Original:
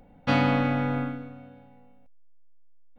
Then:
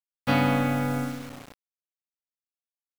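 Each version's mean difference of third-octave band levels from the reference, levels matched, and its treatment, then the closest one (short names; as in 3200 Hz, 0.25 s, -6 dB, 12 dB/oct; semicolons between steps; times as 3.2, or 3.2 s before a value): 6.5 dB: bit-crush 7-bit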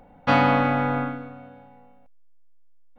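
2.0 dB: bell 1000 Hz +8.5 dB 2 oct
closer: second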